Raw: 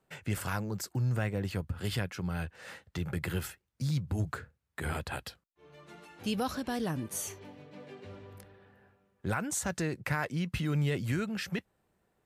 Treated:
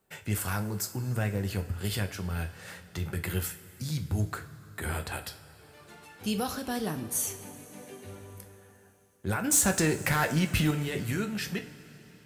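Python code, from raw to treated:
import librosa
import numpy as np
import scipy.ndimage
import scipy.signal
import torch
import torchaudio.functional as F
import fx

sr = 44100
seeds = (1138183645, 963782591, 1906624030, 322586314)

y = fx.high_shelf(x, sr, hz=8200.0, db=11.5)
y = fx.leveller(y, sr, passes=2, at=(9.44, 10.71))
y = fx.rev_double_slope(y, sr, seeds[0], early_s=0.36, late_s=4.4, knee_db=-18, drr_db=5.5)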